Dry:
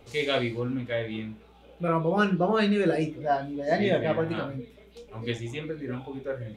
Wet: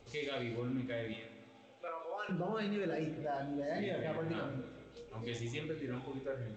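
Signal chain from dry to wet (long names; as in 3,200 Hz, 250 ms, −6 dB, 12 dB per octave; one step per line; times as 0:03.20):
brickwall limiter −24 dBFS, peak gain reduction 11.5 dB
0:01.13–0:02.29: high-pass filter 530 Hz 24 dB per octave
0:05.10–0:06.25: high-shelf EQ 5,400 Hz +9 dB
spring reverb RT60 2 s, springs 38/42/57 ms, chirp 50 ms, DRR 10.5 dB
level −6.5 dB
G.722 64 kbit/s 16,000 Hz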